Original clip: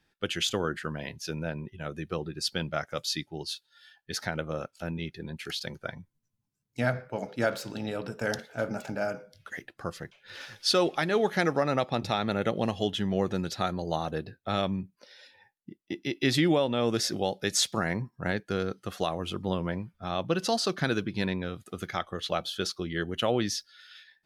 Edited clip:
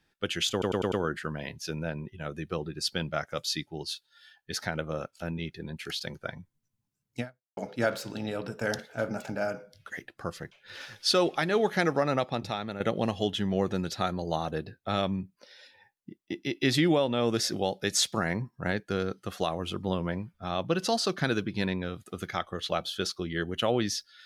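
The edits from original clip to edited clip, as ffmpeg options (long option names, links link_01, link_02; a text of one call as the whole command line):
ffmpeg -i in.wav -filter_complex "[0:a]asplit=7[link_01][link_02][link_03][link_04][link_05][link_06][link_07];[link_01]atrim=end=0.622[link_08];[link_02]atrim=start=0.518:end=0.622[link_09];[link_03]atrim=start=0.518:end=0.622[link_10];[link_04]atrim=start=0.518:end=0.622[link_11];[link_05]atrim=start=0.518:end=7.17,asetpts=PTS-STARTPTS,afade=type=out:start_time=6.282:duration=0.37:curve=exp[link_12];[link_06]atrim=start=7.17:end=12.4,asetpts=PTS-STARTPTS,afade=type=in:duration=0.004:curve=hsin,afade=type=out:start_time=4.55:duration=0.68:silence=0.334965[link_13];[link_07]atrim=start=12.4,asetpts=PTS-STARTPTS,afade=type=in:duration=0.004:curve=hsin:silence=0.334965[link_14];[link_08][link_09]acrossfade=duration=0.004:curve1=hsin:curve2=hsin[link_15];[link_15][link_10]acrossfade=duration=0.004:curve1=hsin:curve2=hsin[link_16];[link_16][link_11]acrossfade=duration=0.004:curve1=hsin:curve2=hsin[link_17];[link_12][link_13][link_14]concat=n=3:v=0:a=1[link_18];[link_17][link_18]acrossfade=duration=0.004:curve1=hsin:curve2=hsin" out.wav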